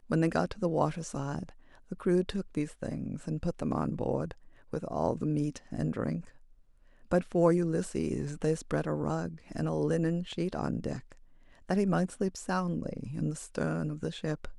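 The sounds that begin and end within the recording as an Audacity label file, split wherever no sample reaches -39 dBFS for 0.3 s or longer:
1.920000	4.320000	sound
4.730000	6.210000	sound
7.110000	11.120000	sound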